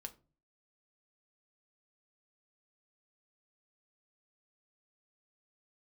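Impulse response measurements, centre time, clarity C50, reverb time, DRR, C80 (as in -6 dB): 6 ms, 17.5 dB, 0.35 s, 6.0 dB, 23.5 dB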